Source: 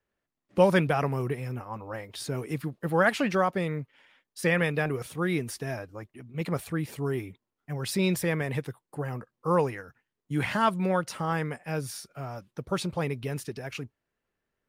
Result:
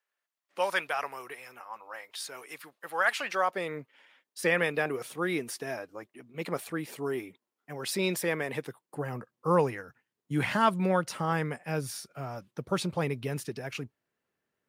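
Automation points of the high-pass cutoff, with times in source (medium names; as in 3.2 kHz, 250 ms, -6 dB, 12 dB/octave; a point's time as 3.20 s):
3.21 s 930 Hz
3.82 s 280 Hz
8.50 s 280 Hz
9.32 s 110 Hz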